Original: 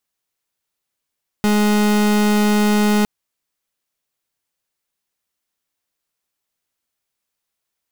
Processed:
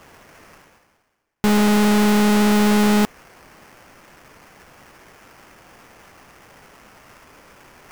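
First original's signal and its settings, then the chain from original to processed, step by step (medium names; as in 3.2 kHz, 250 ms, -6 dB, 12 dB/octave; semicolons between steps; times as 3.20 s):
pulse 209 Hz, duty 37% -15 dBFS 1.61 s
reverse; upward compressor, threshold -22 dBFS; reverse; sample-rate reducer 3.9 kHz, jitter 20%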